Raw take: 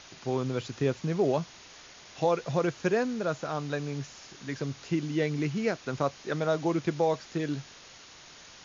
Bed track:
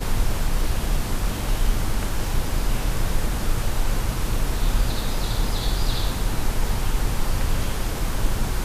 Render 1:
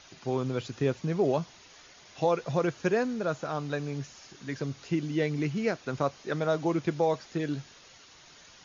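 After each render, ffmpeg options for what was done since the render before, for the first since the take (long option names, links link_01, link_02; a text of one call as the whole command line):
ffmpeg -i in.wav -af "afftdn=noise_reduction=6:noise_floor=-51" out.wav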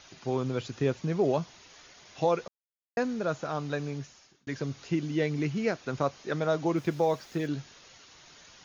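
ffmpeg -i in.wav -filter_complex "[0:a]asplit=3[link_01][link_02][link_03];[link_01]afade=type=out:start_time=6.76:duration=0.02[link_04];[link_02]acrusher=bits=8:mix=0:aa=0.5,afade=type=in:start_time=6.76:duration=0.02,afade=type=out:start_time=7.46:duration=0.02[link_05];[link_03]afade=type=in:start_time=7.46:duration=0.02[link_06];[link_04][link_05][link_06]amix=inputs=3:normalize=0,asplit=4[link_07][link_08][link_09][link_10];[link_07]atrim=end=2.48,asetpts=PTS-STARTPTS,afade=type=out:start_time=2.476:duration=0.004:curve=hsin[link_11];[link_08]atrim=start=2.48:end=2.97,asetpts=PTS-STARTPTS,volume=0[link_12];[link_09]atrim=start=2.97:end=4.47,asetpts=PTS-STARTPTS,afade=type=in:duration=0.004:curve=hsin,afade=type=out:start_time=0.9:duration=0.6[link_13];[link_10]atrim=start=4.47,asetpts=PTS-STARTPTS,afade=type=in:duration=0.004:curve=hsin[link_14];[link_11][link_12][link_13][link_14]concat=n=4:v=0:a=1" out.wav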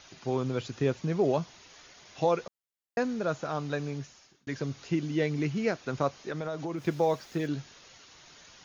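ffmpeg -i in.wav -filter_complex "[0:a]asettb=1/sr,asplit=3[link_01][link_02][link_03];[link_01]atrim=end=6.204[link_04];[link_02]atrim=start=6.2:end=6.84,asetpts=PTS-STARTPTS,afade=type=in:duration=0.004:curve=qsin,afade=type=out:start_time=0.636:duration=0.004:curve=qsin,acompressor=threshold=-30dB:ratio=6:attack=3.2:release=140:knee=1:detection=peak[link_05];[link_03]atrim=start=6.836[link_06];[link_04][link_05]acrossfade=duration=0.004:curve1=hsin:curve2=qsin[link_07];[link_07][link_06]acrossfade=duration=0.004:curve1=qsin:curve2=hsin" out.wav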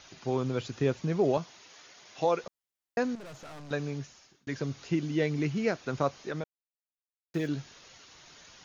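ffmpeg -i in.wav -filter_complex "[0:a]asettb=1/sr,asplit=3[link_01][link_02][link_03];[link_01]atrim=end=1.374[link_04];[link_02]atrim=start=1.37:end=2.44,asetpts=PTS-STARTPTS,afade=type=in:duration=0.004:curve=qsin,afade=type=out:start_time=1.066:duration=0.004:curve=qsin,highpass=frequency=250:poles=1[link_05];[link_03]atrim=start=2.436[link_06];[link_04][link_05]acrossfade=duration=0.004:curve1=hsin:curve2=qsin[link_07];[link_07][link_06]acrossfade=duration=0.004:curve1=qsin:curve2=hsin,asettb=1/sr,asplit=3[link_08][link_09][link_10];[link_08]atrim=end=3.154[link_11];[link_09]atrim=start=3.15:end=3.71,asetpts=PTS-STARTPTS,afade=type=in:duration=0.004:curve=qsin,afade=type=out:start_time=0.556:duration=0.004:curve=qsin,aeval=exprs='(tanh(158*val(0)+0.25)-tanh(0.25))/158':channel_layout=same[link_12];[link_10]atrim=start=3.706[link_13];[link_11][link_12]acrossfade=duration=0.004:curve1=hsin:curve2=qsin[link_14];[link_14][link_13]acrossfade=duration=0.004:curve1=qsin:curve2=hsin,asplit=3[link_15][link_16][link_17];[link_15]atrim=end=6.44,asetpts=PTS-STARTPTS,afade=type=out:start_time=6.436:duration=0.004:curve=hsin[link_18];[link_16]atrim=start=6.44:end=7.34,asetpts=PTS-STARTPTS,volume=0[link_19];[link_17]atrim=start=7.34,asetpts=PTS-STARTPTS,afade=type=in:duration=0.004:curve=hsin[link_20];[link_18][link_19][link_20]concat=n=3:v=0:a=1" out.wav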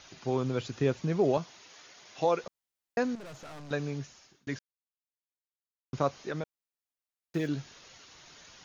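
ffmpeg -i in.wav -filter_complex "[0:a]asplit=3[link_01][link_02][link_03];[link_01]atrim=end=4.59,asetpts=PTS-STARTPTS,afade=type=out:start_time=4.586:duration=0.004:curve=hsin[link_04];[link_02]atrim=start=4.59:end=5.93,asetpts=PTS-STARTPTS,volume=0[link_05];[link_03]atrim=start=5.93,asetpts=PTS-STARTPTS,afade=type=in:duration=0.004:curve=hsin[link_06];[link_04][link_05][link_06]concat=n=3:v=0:a=1" out.wav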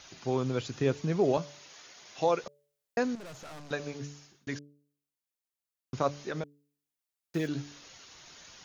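ffmpeg -i in.wav -af "highshelf=frequency=5400:gain=4.5,bandreject=frequency=144.5:width_type=h:width=4,bandreject=frequency=289:width_type=h:width=4,bandreject=frequency=433.5:width_type=h:width=4,bandreject=frequency=578:width_type=h:width=4" out.wav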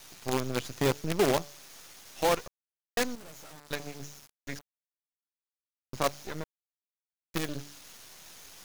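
ffmpeg -i in.wav -af "crystalizer=i=1.5:c=0,acrusher=bits=5:dc=4:mix=0:aa=0.000001" out.wav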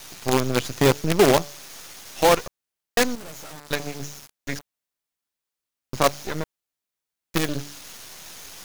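ffmpeg -i in.wav -af "volume=9dB" out.wav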